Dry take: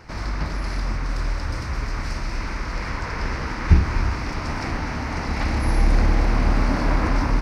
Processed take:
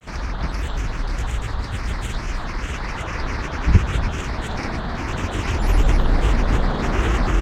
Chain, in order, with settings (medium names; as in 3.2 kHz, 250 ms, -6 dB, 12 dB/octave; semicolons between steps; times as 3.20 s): granulator, pitch spread up and down by 7 st; delay 320 ms -15 dB; trim +2 dB